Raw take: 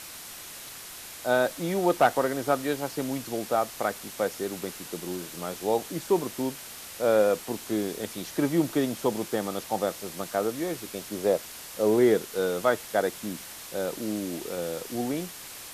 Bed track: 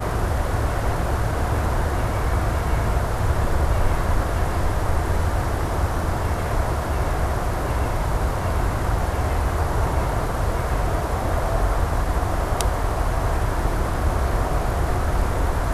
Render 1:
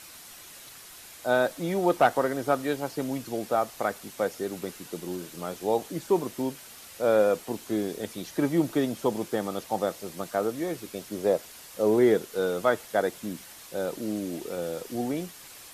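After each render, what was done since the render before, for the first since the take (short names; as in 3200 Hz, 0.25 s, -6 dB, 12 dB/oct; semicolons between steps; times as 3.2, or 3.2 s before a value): denoiser 6 dB, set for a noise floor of -43 dBFS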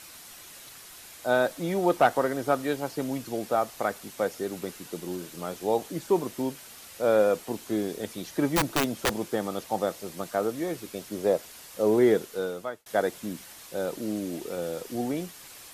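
8.5–9.25 wrapped overs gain 18 dB; 12.22–12.86 fade out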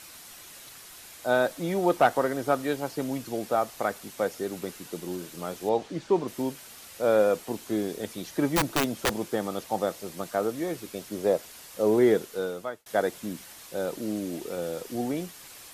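5.69–6.28 LPF 5100 Hz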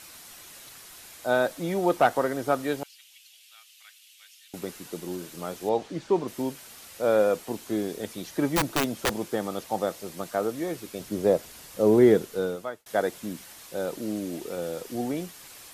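2.83–4.54 ladder high-pass 2500 Hz, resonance 55%; 11–12.56 low shelf 300 Hz +8 dB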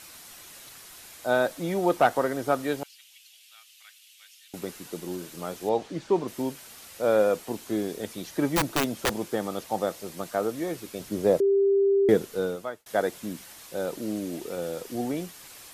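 11.4–12.09 bleep 395 Hz -18 dBFS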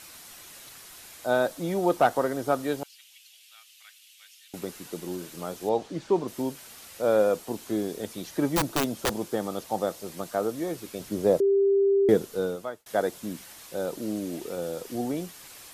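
dynamic EQ 2100 Hz, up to -4 dB, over -47 dBFS, Q 1.3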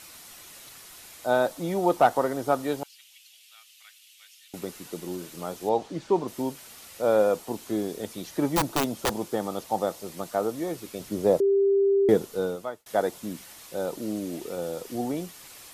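notch 1600 Hz, Q 23; dynamic EQ 870 Hz, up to +4 dB, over -41 dBFS, Q 2.5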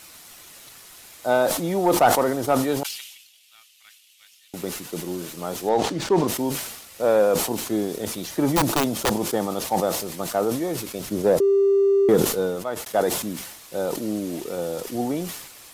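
sample leveller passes 1; sustainer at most 58 dB/s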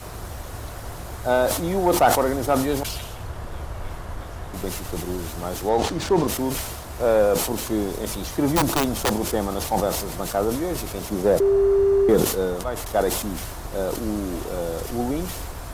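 add bed track -12.5 dB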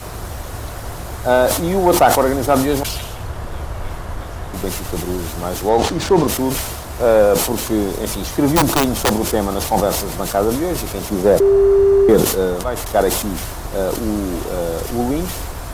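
gain +6 dB; limiter -3 dBFS, peak gain reduction 2 dB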